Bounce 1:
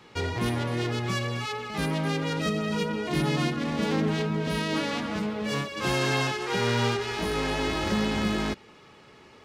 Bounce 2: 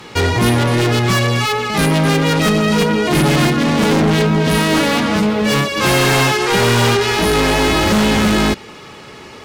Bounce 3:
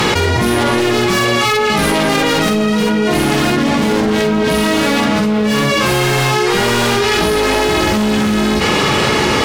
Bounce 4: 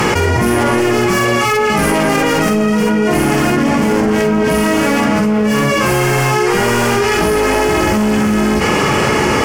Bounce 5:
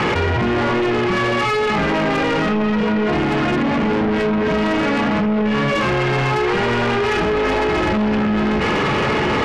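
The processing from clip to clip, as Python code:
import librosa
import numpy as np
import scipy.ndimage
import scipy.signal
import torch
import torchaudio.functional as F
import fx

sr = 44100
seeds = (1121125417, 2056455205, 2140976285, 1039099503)

y1 = fx.high_shelf(x, sr, hz=6300.0, db=6.5)
y1 = fx.fold_sine(y1, sr, drive_db=8, ceiling_db=-13.0)
y1 = y1 * librosa.db_to_amplitude(4.0)
y2 = fx.room_early_taps(y1, sr, ms=(47, 61), db=(-3.0, -6.5))
y2 = fx.env_flatten(y2, sr, amount_pct=100)
y2 = y2 * librosa.db_to_amplitude(-7.0)
y3 = fx.peak_eq(y2, sr, hz=3800.0, db=-14.5, octaves=0.45)
y3 = y3 * librosa.db_to_amplitude(1.0)
y4 = scipy.signal.sosfilt(scipy.signal.butter(4, 3600.0, 'lowpass', fs=sr, output='sos'), y3)
y4 = 10.0 ** (-14.5 / 20.0) * np.tanh(y4 / 10.0 ** (-14.5 / 20.0))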